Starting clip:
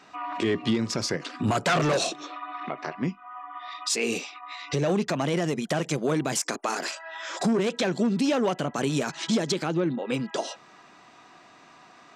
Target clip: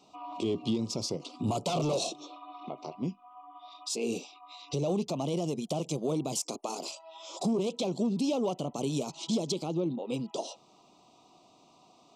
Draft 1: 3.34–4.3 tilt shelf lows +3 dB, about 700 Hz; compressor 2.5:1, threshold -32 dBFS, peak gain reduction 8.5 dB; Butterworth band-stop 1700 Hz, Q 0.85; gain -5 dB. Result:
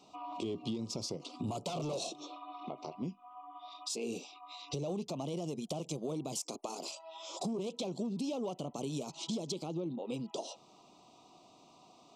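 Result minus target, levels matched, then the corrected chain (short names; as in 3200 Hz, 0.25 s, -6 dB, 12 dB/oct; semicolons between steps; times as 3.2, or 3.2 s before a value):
compressor: peak gain reduction +8.5 dB
3.34–4.3 tilt shelf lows +3 dB, about 700 Hz; Butterworth band-stop 1700 Hz, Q 0.85; gain -5 dB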